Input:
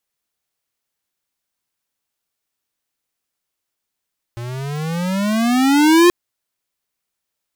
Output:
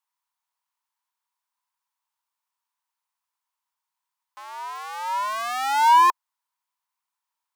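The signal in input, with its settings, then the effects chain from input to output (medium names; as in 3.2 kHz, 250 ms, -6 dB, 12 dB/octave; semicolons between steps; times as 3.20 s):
gliding synth tone square, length 1.73 s, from 116 Hz, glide +19.5 st, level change +19 dB, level -9 dB
ladder high-pass 910 Hz, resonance 80%; in parallel at -3.5 dB: saturation -19 dBFS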